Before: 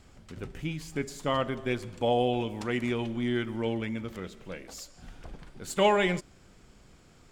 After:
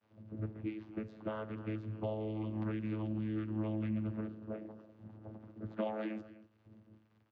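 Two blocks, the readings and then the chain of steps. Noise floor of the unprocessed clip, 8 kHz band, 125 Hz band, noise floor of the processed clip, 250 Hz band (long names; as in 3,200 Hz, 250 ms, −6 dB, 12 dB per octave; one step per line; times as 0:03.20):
−57 dBFS, below −35 dB, −3.5 dB, −70 dBFS, −5.5 dB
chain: noise gate with hold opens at −45 dBFS
low-pass that shuts in the quiet parts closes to 410 Hz, open at −26 dBFS
low-shelf EQ 340 Hz −4 dB
comb filter 3.4 ms, depth 63%
downward compressor 4 to 1, threshold −39 dBFS, peak gain reduction 18 dB
surface crackle 410 per second −51 dBFS
channel vocoder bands 16, saw 108 Hz
high-frequency loss of the air 200 metres
slap from a distant wall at 43 metres, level −17 dB
level +4 dB
Ogg Vorbis 48 kbit/s 44,100 Hz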